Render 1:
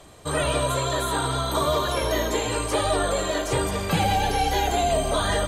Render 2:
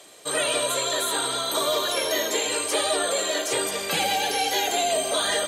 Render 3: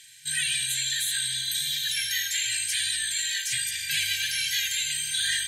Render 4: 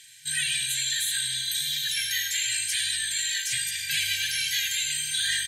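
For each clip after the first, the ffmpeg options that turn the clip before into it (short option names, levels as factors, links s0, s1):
-af "highpass=510,equalizer=f=1000:t=o:w=1.5:g=-10,acontrast=47"
-af "afftfilt=real='re*(1-between(b*sr/4096,160,1500))':imag='im*(1-between(b*sr/4096,160,1500))':win_size=4096:overlap=0.75"
-af "aecho=1:1:102:0.2"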